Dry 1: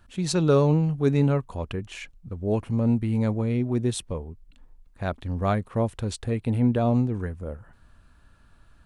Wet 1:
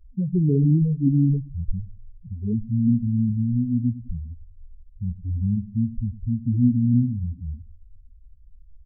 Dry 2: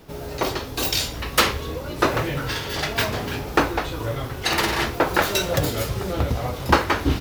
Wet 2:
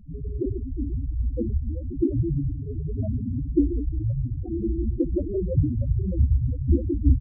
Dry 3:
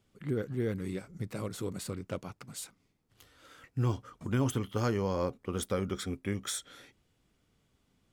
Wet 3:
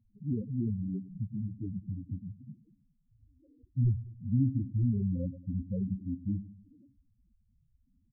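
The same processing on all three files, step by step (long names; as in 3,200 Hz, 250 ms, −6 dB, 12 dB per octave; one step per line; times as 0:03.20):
each half-wave held at its own peak
octave-band graphic EQ 250/1,000/2,000/4,000 Hz +7/−4/−10/−12 dB
low-pass that shuts in the quiet parts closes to 890 Hz, open at −14.5 dBFS
low-shelf EQ 82 Hz +10 dB
on a send: repeating echo 101 ms, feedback 50%, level −15.5 dB
on the sum: spectral peaks only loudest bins 4
level −5.5 dB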